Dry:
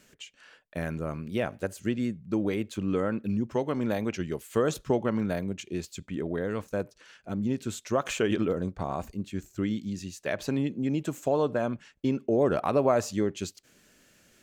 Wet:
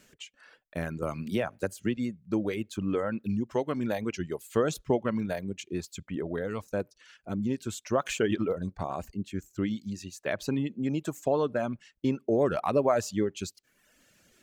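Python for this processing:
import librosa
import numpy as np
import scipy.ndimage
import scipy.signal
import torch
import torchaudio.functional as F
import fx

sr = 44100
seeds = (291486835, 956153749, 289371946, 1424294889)

y = fx.dereverb_blind(x, sr, rt60_s=0.86)
y = fx.band_squash(y, sr, depth_pct=70, at=(1.02, 1.97))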